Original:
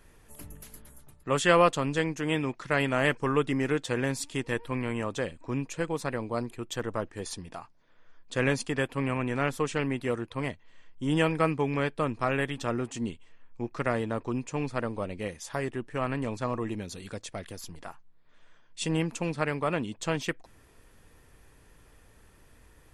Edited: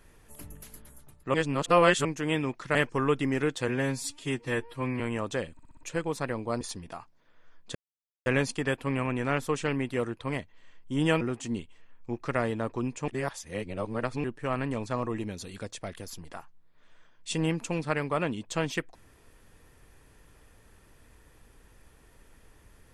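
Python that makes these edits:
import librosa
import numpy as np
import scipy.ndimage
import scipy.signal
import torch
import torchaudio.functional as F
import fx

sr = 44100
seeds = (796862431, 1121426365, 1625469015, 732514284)

y = fx.edit(x, sr, fx.reverse_span(start_s=1.34, length_s=0.71),
    fx.cut(start_s=2.75, length_s=0.28),
    fx.stretch_span(start_s=3.96, length_s=0.88, factor=1.5),
    fx.stutter_over(start_s=5.37, slice_s=0.06, count=5),
    fx.cut(start_s=6.45, length_s=0.78),
    fx.insert_silence(at_s=8.37, length_s=0.51),
    fx.cut(start_s=11.32, length_s=1.4),
    fx.reverse_span(start_s=14.59, length_s=1.16), tone=tone)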